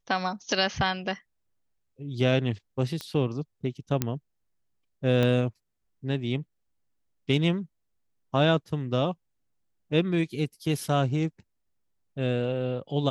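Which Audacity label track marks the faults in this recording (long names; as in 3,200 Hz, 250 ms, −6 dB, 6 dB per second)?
3.010000	3.010000	click −19 dBFS
4.020000	4.020000	click −10 dBFS
5.230000	5.230000	click −14 dBFS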